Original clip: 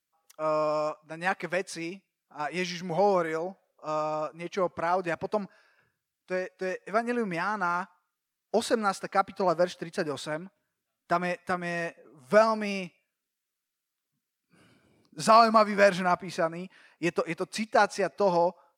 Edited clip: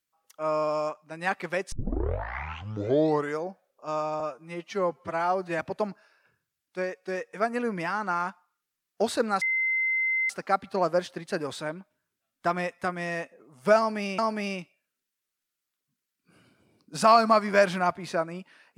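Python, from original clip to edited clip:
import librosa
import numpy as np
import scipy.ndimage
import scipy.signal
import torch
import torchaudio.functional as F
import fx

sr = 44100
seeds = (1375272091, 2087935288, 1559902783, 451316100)

y = fx.edit(x, sr, fx.tape_start(start_s=1.72, length_s=1.71),
    fx.stretch_span(start_s=4.2, length_s=0.93, factor=1.5),
    fx.insert_tone(at_s=8.95, length_s=0.88, hz=2070.0, db=-23.0),
    fx.repeat(start_s=12.43, length_s=0.41, count=2), tone=tone)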